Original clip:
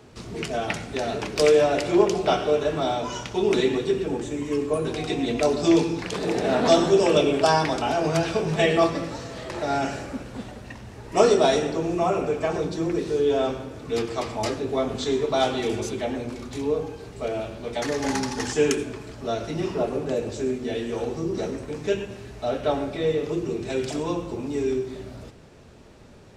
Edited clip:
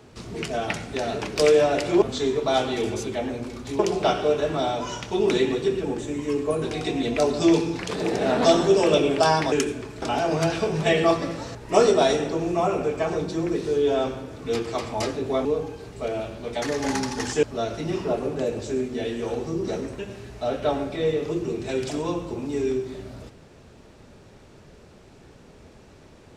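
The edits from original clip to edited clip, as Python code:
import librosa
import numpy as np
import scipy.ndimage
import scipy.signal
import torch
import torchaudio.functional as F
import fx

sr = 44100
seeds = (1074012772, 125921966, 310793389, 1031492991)

y = fx.edit(x, sr, fx.cut(start_s=9.28, length_s=1.7),
    fx.move(start_s=14.88, length_s=1.77, to_s=2.02),
    fx.move(start_s=18.63, length_s=0.5, to_s=7.75),
    fx.cut(start_s=21.69, length_s=0.31), tone=tone)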